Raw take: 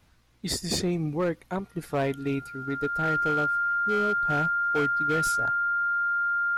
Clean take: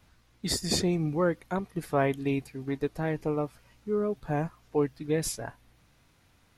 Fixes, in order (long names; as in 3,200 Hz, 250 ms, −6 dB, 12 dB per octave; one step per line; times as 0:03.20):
clipped peaks rebuilt −20 dBFS
notch filter 1,400 Hz, Q 30